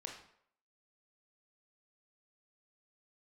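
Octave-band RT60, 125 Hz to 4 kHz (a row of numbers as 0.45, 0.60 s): 0.50, 0.55, 0.70, 0.65, 0.60, 0.50 s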